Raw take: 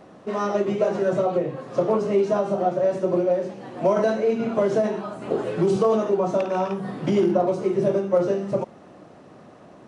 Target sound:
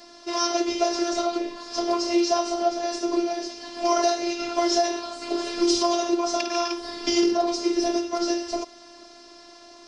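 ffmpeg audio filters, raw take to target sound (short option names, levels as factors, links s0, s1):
-af "lowpass=f=5100:t=q:w=5.5,afftfilt=real='hypot(re,im)*cos(PI*b)':imag='0':win_size=512:overlap=0.75,crystalizer=i=6:c=0"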